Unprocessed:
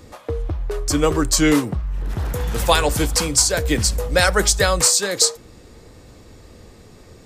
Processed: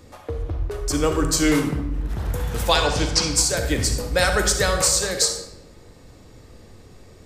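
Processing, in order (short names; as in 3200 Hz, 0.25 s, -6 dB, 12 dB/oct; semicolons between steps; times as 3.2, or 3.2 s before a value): 2.69–3.31 synth low-pass 5400 Hz, resonance Q 2.2; on a send: reverb RT60 0.90 s, pre-delay 42 ms, DRR 5 dB; on the sum: gain -4 dB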